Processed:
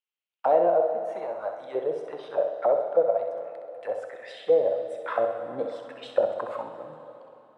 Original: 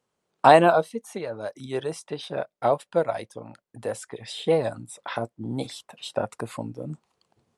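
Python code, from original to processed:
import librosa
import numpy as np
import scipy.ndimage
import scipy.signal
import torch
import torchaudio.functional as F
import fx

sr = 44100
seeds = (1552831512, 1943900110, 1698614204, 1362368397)

y = fx.rider(x, sr, range_db=4, speed_s=0.5)
y = fx.leveller(y, sr, passes=1)
y = fx.auto_wah(y, sr, base_hz=540.0, top_hz=2800.0, q=3.9, full_db=-17.5, direction='down')
y = fx.room_flutter(y, sr, wall_m=11.1, rt60_s=0.52)
y = fx.rev_plate(y, sr, seeds[0], rt60_s=3.4, hf_ratio=0.8, predelay_ms=0, drr_db=7.5)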